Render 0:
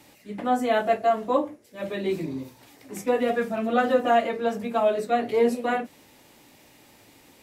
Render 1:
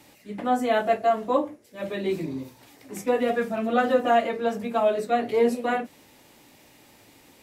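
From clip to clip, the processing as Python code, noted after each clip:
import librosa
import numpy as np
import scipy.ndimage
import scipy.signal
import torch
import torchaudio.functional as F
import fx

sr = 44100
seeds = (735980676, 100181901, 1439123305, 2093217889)

y = x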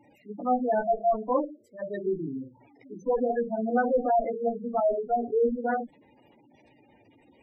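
y = fx.tube_stage(x, sr, drive_db=19.0, bias=0.75)
y = fx.spec_gate(y, sr, threshold_db=-10, keep='strong')
y = fx.hum_notches(y, sr, base_hz=50, count=4)
y = y * librosa.db_to_amplitude(3.0)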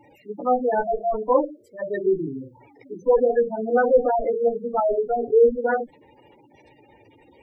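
y = x + 0.5 * np.pad(x, (int(2.2 * sr / 1000.0), 0))[:len(x)]
y = y * librosa.db_to_amplitude(5.5)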